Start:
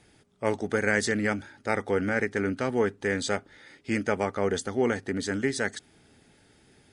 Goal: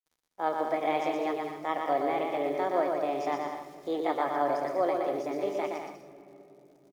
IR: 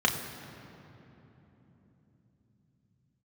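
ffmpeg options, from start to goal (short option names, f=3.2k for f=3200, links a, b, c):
-filter_complex "[0:a]acrossover=split=3200[a][b];[b]acompressor=threshold=-54dB:ratio=4:attack=1:release=60[c];[a][c]amix=inputs=2:normalize=0,highpass=250,lowpass=4.7k,equalizer=f=1.9k:t=o:w=0.52:g=-14.5,bandreject=f=410.2:t=h:w=4,bandreject=f=820.4:t=h:w=4,bandreject=f=1.2306k:t=h:w=4,bandreject=f=1.6408k:t=h:w=4,bandreject=f=2.051k:t=h:w=4,bandreject=f=2.4612k:t=h:w=4,bandreject=f=2.8714k:t=h:w=4,acrusher=bits=8:mix=0:aa=0.000001,asetrate=64194,aresample=44100,atempo=0.686977,lowshelf=f=400:g=5,aecho=1:1:120|198|248.7|281.7|303.1:0.631|0.398|0.251|0.158|0.1,asplit=2[d][e];[1:a]atrim=start_sample=2205,highshelf=f=9.2k:g=9[f];[e][f]afir=irnorm=-1:irlink=0,volume=-19dB[g];[d][g]amix=inputs=2:normalize=0,volume=-5dB"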